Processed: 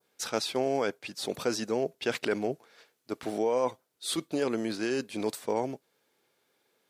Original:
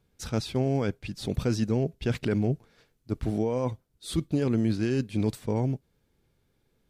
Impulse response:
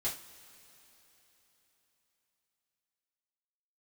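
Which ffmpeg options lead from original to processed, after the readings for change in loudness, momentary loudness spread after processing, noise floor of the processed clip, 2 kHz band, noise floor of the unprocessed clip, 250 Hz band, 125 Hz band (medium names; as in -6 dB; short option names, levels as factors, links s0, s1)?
-2.5 dB, 8 LU, -76 dBFS, +4.0 dB, -72 dBFS, -6.0 dB, -18.0 dB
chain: -af "highpass=500,adynamicequalizer=threshold=0.00224:dfrequency=2700:dqfactor=0.9:tfrequency=2700:tqfactor=0.9:attack=5:release=100:ratio=0.375:range=2:mode=cutabove:tftype=bell,volume=1.88"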